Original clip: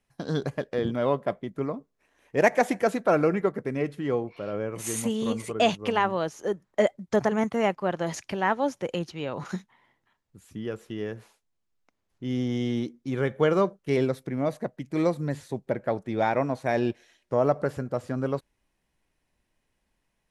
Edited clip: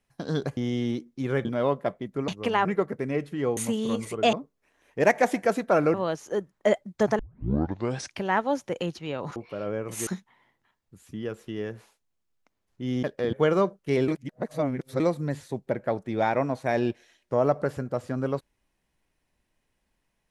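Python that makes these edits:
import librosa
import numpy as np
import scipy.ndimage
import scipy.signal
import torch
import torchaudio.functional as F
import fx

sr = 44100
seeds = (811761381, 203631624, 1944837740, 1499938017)

y = fx.edit(x, sr, fx.swap(start_s=0.57, length_s=0.3, other_s=12.45, other_length_s=0.88),
    fx.swap(start_s=1.7, length_s=1.61, other_s=5.7, other_length_s=0.37),
    fx.move(start_s=4.23, length_s=0.71, to_s=9.49),
    fx.tape_start(start_s=7.32, length_s=0.95),
    fx.reverse_span(start_s=14.08, length_s=0.92), tone=tone)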